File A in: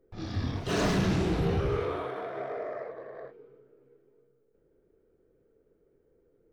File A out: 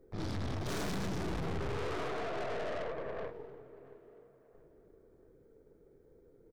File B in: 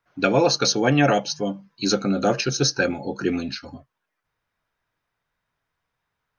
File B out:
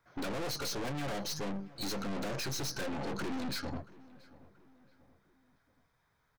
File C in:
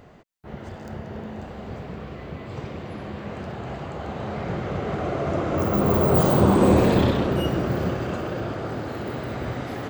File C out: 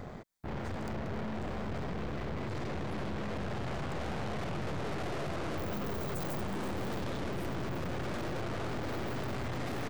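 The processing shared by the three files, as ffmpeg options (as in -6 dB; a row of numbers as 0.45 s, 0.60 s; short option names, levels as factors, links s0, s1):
-filter_complex "[0:a]lowshelf=f=350:g=3.5,bandreject=f=2800:w=5.1,acompressor=threshold=0.0631:ratio=5,aeval=exprs='(tanh(141*val(0)+0.7)-tanh(0.7))/141':c=same,asplit=2[s0][s1];[s1]adelay=680,lowpass=f=2200:p=1,volume=0.1,asplit=2[s2][s3];[s3]adelay=680,lowpass=f=2200:p=1,volume=0.46,asplit=2[s4][s5];[s5]adelay=680,lowpass=f=2200:p=1,volume=0.46[s6];[s0][s2][s4][s6]amix=inputs=4:normalize=0,volume=2.24"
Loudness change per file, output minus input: -7.5 LU, -15.5 LU, -14.0 LU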